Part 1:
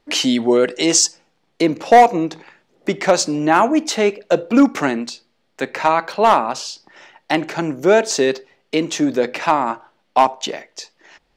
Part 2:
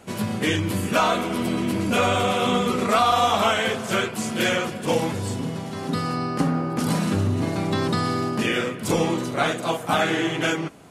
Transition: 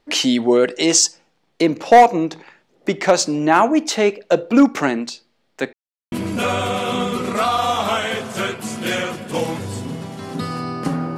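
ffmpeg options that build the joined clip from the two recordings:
ffmpeg -i cue0.wav -i cue1.wav -filter_complex "[0:a]apad=whole_dur=11.17,atrim=end=11.17,asplit=2[link_01][link_02];[link_01]atrim=end=5.73,asetpts=PTS-STARTPTS,afade=type=out:start_time=5.726:duration=0.004:curve=hsin[link_03];[link_02]atrim=start=5.73:end=6.12,asetpts=PTS-STARTPTS,volume=0[link_04];[1:a]atrim=start=1.66:end=6.71,asetpts=PTS-STARTPTS,afade=type=in:duration=0.004:curve=hsin[link_05];[link_03][link_04][link_05]concat=n=3:v=0:a=1" out.wav

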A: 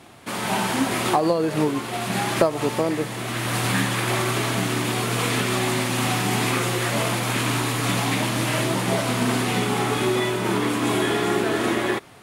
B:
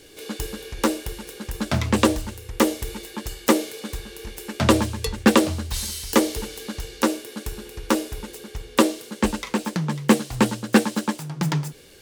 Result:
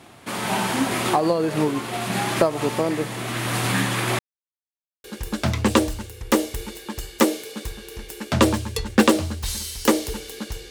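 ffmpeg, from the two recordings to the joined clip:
ffmpeg -i cue0.wav -i cue1.wav -filter_complex "[0:a]apad=whole_dur=10.7,atrim=end=10.7,asplit=2[link_01][link_02];[link_01]atrim=end=4.19,asetpts=PTS-STARTPTS,afade=type=out:start_time=4.186:duration=0.004:curve=hsin[link_03];[link_02]atrim=start=4.19:end=5.04,asetpts=PTS-STARTPTS,volume=0[link_04];[1:a]atrim=start=1.32:end=6.98,asetpts=PTS-STARTPTS,afade=type=in:duration=0.004:curve=hsin[link_05];[link_03][link_04][link_05]concat=n=3:v=0:a=1" out.wav

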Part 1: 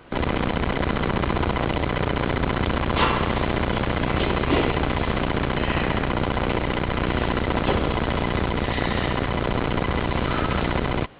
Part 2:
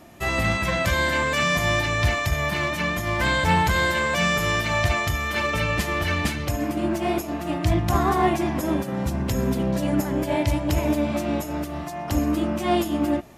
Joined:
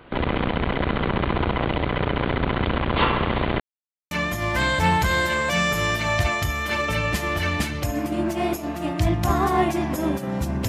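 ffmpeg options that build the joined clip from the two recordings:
ffmpeg -i cue0.wav -i cue1.wav -filter_complex "[0:a]apad=whole_dur=10.68,atrim=end=10.68,asplit=2[link_01][link_02];[link_01]atrim=end=3.6,asetpts=PTS-STARTPTS,afade=type=out:start_time=3.596:duration=0.004:curve=hsin[link_03];[link_02]atrim=start=3.6:end=4.11,asetpts=PTS-STARTPTS,volume=0[link_04];[1:a]atrim=start=2.76:end=9.33,asetpts=PTS-STARTPTS,afade=type=in:duration=0.004:curve=hsin[link_05];[link_03][link_04][link_05]concat=n=3:v=0:a=1" out.wav

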